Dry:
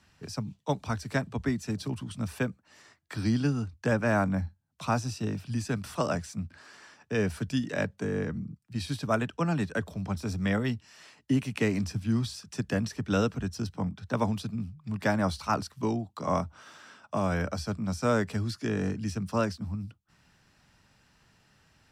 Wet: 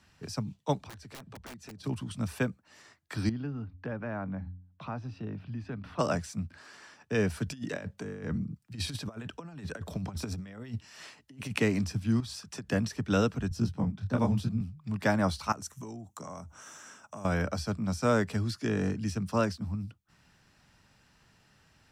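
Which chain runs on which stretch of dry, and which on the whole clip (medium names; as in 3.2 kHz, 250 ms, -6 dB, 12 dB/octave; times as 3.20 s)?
0.78–1.84 s: treble shelf 7.1 kHz -9 dB + integer overflow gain 23.5 dB + compression 8:1, threshold -44 dBFS
3.29–5.99 s: de-hum 90.83 Hz, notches 3 + compression 2:1, threshold -38 dBFS + distance through air 350 m
7.46–11.60 s: compressor with a negative ratio -34 dBFS, ratio -0.5 + tremolo triangle 3.7 Hz, depth 40%
12.20–12.70 s: peaking EQ 960 Hz +4 dB 1.9 oct + compression 12:1, threshold -35 dBFS
13.49–14.61 s: bass shelf 240 Hz +11.5 dB + detune thickener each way 30 cents
15.52–17.25 s: band-stop 4.8 kHz, Q 9.7 + compression 8:1, threshold -39 dBFS + resonant high shelf 5.2 kHz +7 dB, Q 3
whole clip: none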